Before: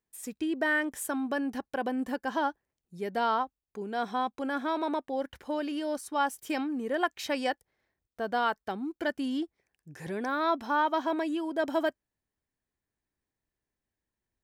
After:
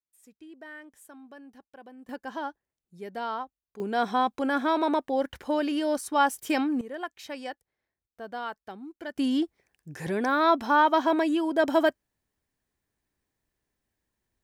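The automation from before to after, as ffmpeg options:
ffmpeg -i in.wav -af "asetnsamples=nb_out_samples=441:pad=0,asendcmd='2.09 volume volume -5dB;3.8 volume volume 5.5dB;6.81 volume volume -7dB;9.16 volume volume 6dB',volume=-17dB" out.wav

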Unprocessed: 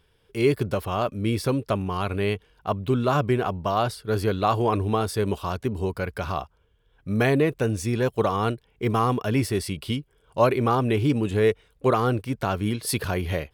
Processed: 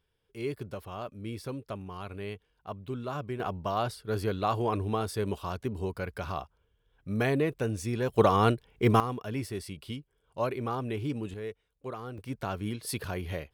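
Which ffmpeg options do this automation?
ffmpeg -i in.wav -af "asetnsamples=nb_out_samples=441:pad=0,asendcmd='3.4 volume volume -6.5dB;8.09 volume volume 1dB;9 volume volume -11dB;11.34 volume volume -18dB;12.18 volume volume -8.5dB',volume=-13.5dB" out.wav

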